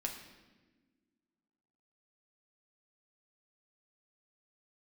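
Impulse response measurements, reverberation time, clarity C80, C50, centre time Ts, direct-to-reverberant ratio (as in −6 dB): 1.3 s, 9.0 dB, 7.0 dB, 28 ms, 1.0 dB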